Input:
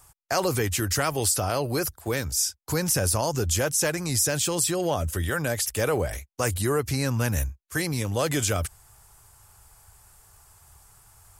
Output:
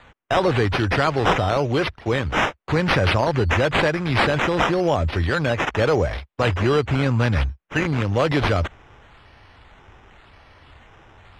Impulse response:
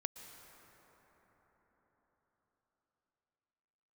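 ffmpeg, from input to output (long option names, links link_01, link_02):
-af "acrusher=samples=8:mix=1:aa=0.000001:lfo=1:lforange=4.8:lforate=0.93,lowpass=3400,volume=6dB"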